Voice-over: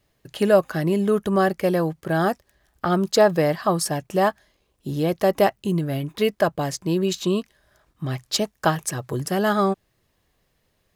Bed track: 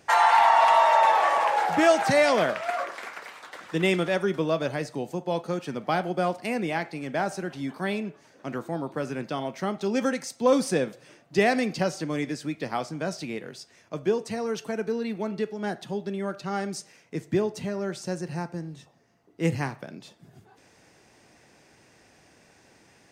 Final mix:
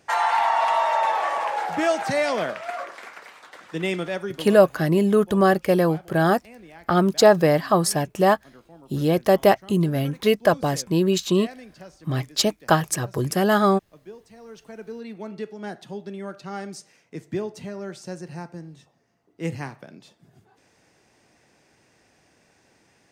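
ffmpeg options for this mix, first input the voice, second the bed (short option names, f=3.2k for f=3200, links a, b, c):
-filter_complex "[0:a]adelay=4050,volume=2dB[a];[1:a]volume=11.5dB,afade=t=out:st=4.1:d=0.53:silence=0.177828,afade=t=in:st=14.33:d=1.13:silence=0.199526[b];[a][b]amix=inputs=2:normalize=0"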